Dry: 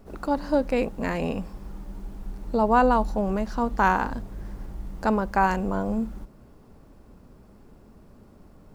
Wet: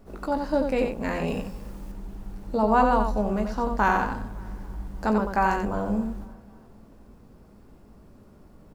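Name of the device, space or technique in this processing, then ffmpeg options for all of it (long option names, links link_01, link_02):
slapback doubling: -filter_complex "[0:a]asplit=3[link_01][link_02][link_03];[link_02]adelay=19,volume=-8dB[link_04];[link_03]adelay=89,volume=-5.5dB[link_05];[link_01][link_04][link_05]amix=inputs=3:normalize=0,asettb=1/sr,asplit=3[link_06][link_07][link_08];[link_06]atrim=end=1.274[link_09];[link_07]atrim=start=1.27:end=1.92,asetpts=PTS-STARTPTS,afade=type=in:duration=0.004:curve=qsin,afade=type=out:start_time=0.646:duration=0.004:curve=qsin,highshelf=frequency=3800:gain=7.5[link_10];[link_08]atrim=start=1.916[link_11];[link_09][link_10]acrossfade=duration=0.004:curve1=hsin:curve2=qsin[link_12];[link_12][link_11]acrossfade=duration=0.004:curve1=qsin:curve2=hsin,asplit=2[link_13][link_14];[link_14]adelay=279,lowpass=frequency=3800:poles=1,volume=-22.5dB,asplit=2[link_15][link_16];[link_16]adelay=279,lowpass=frequency=3800:poles=1,volume=0.54,asplit=2[link_17][link_18];[link_18]adelay=279,lowpass=frequency=3800:poles=1,volume=0.54,asplit=2[link_19][link_20];[link_20]adelay=279,lowpass=frequency=3800:poles=1,volume=0.54[link_21];[link_13][link_15][link_17][link_19][link_21]amix=inputs=5:normalize=0,volume=-2dB"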